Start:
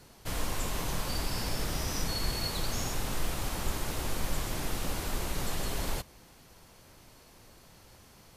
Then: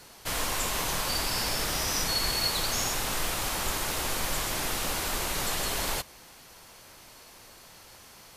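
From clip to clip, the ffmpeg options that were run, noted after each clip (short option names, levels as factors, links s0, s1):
-af "lowshelf=f=420:g=-11.5,volume=2.51"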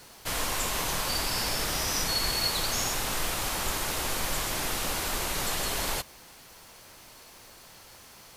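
-af "acrusher=bits=8:mix=0:aa=0.5"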